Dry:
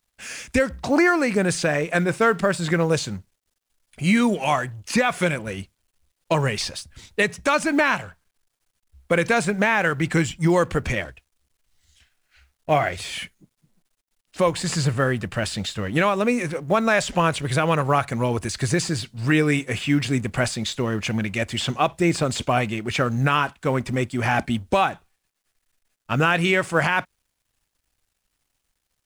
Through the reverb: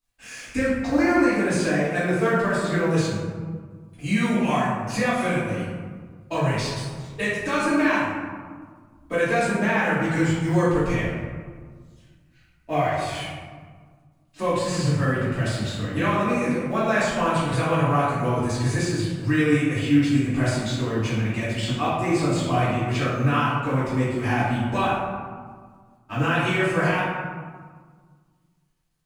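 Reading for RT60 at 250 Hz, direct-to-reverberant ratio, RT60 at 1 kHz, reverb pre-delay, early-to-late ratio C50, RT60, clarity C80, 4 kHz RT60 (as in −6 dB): 2.1 s, −11.5 dB, 1.7 s, 3 ms, −1.5 dB, 1.7 s, 1.5 dB, 0.80 s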